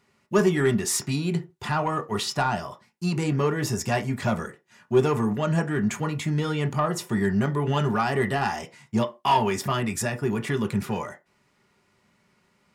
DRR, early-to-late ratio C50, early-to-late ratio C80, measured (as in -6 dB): 4.0 dB, 18.5 dB, 25.5 dB